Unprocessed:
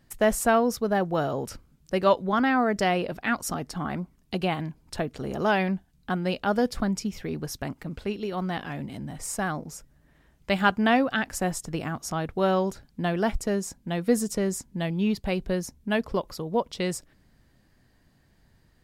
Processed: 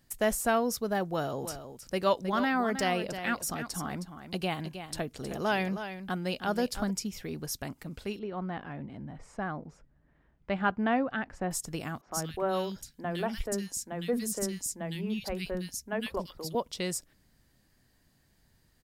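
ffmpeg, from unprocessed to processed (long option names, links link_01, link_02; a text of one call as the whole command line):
ffmpeg -i in.wav -filter_complex "[0:a]asplit=3[link_01][link_02][link_03];[link_01]afade=type=out:start_time=1.41:duration=0.02[link_04];[link_02]aecho=1:1:315:0.316,afade=type=in:start_time=1.41:duration=0.02,afade=type=out:start_time=6.89:duration=0.02[link_05];[link_03]afade=type=in:start_time=6.89:duration=0.02[link_06];[link_04][link_05][link_06]amix=inputs=3:normalize=0,asettb=1/sr,asplit=3[link_07][link_08][link_09];[link_07]atrim=end=8.194[link_10];[link_08]atrim=start=8.19:end=11.51,asetpts=PTS-STARTPTS,afade=type=in:duration=0.004:curve=qsin,afade=type=out:start_time=3.316:duration=0.004:curve=qsin,lowpass=1700[link_11];[link_09]atrim=start=11.506[link_12];[link_10][link_11]acrossfade=duration=0.004:curve1=hsin:curve2=qsin[link_13];[link_13][link_12]acrossfade=duration=0.004:curve1=qsin:curve2=hsin,asettb=1/sr,asplit=3[link_14][link_15][link_16];[link_14]atrim=end=12.014[link_17];[link_15]atrim=start=12.01:end=16.55,asetpts=PTS-STARTPTS,afade=type=in:duration=0.004:curve=qsin,afade=type=out:start_time=4.536:duration=0.004:curve=qsin,acrossover=split=260|2000[link_18][link_19][link_20];[link_18]adelay=50[link_21];[link_20]adelay=110[link_22];[link_21][link_19][link_22]amix=inputs=3:normalize=0,atrim=end_sample=200214[link_23];[link_16]atrim=start=16.546[link_24];[link_17][link_23]acrossfade=duration=0.004:curve1=hsin:curve2=qsin[link_25];[link_25][link_24]acrossfade=duration=0.004:curve1=qsin:curve2=hsin,deesser=0.55,highshelf=frequency=4200:gain=10.5,volume=-6dB" out.wav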